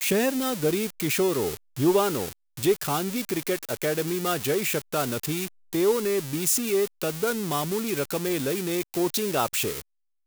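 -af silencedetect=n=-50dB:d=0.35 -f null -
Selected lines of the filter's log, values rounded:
silence_start: 9.81
silence_end: 10.26 | silence_duration: 0.45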